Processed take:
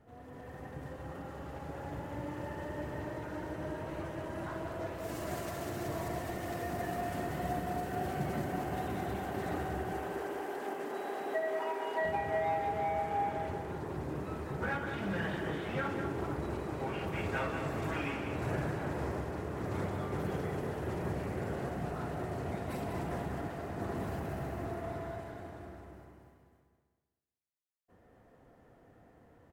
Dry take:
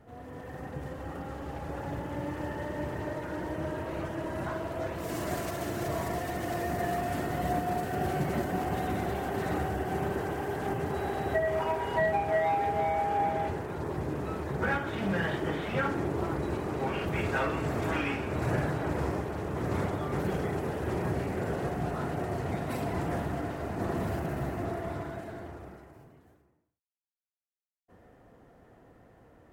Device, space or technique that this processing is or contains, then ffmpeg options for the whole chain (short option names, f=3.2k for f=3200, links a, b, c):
ducked delay: -filter_complex "[0:a]asettb=1/sr,asplit=3[a][b][c];[a]atrim=end=9.934[d];[b]atrim=start=9.93:end=12.05,asetpts=PTS-STARTPTS,afade=t=in:d=0.004:c=qsin,afade=t=out:st=2.116:d=0.004:c=qsin,highpass=f=260:w=0.5412,highpass=f=260:w=1.3066[e];[c]atrim=start=12.046[f];[d][e]acrossfade=d=0.004:c1=hsin:c2=qsin[g];[g][f]acrossfade=d=0.004:c1=qsin:c2=hsin,asplit=3[h][i][j];[i]adelay=255,volume=-5dB[k];[j]apad=whole_len=1313303[l];[k][l]sidechaincompress=threshold=-40dB:ratio=8:attack=16:release=390[m];[h][m]amix=inputs=2:normalize=0,aecho=1:1:195|390|585|780:0.447|0.17|0.0645|0.0245,volume=-6dB"